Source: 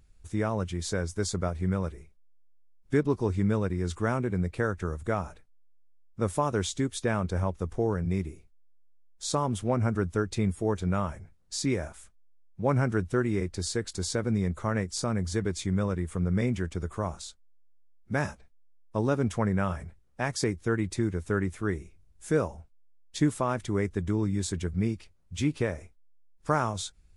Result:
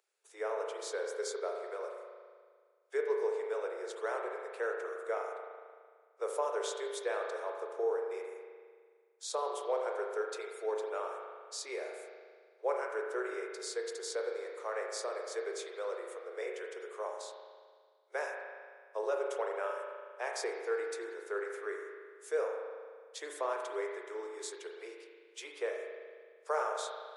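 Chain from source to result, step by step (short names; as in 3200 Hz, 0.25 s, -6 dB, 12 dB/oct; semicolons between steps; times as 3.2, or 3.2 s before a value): steep high-pass 390 Hz 72 dB/oct; dynamic EQ 500 Hz, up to +4 dB, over -41 dBFS, Q 2.5; spring tank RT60 1.8 s, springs 37 ms, chirp 55 ms, DRR 1 dB; gain -8 dB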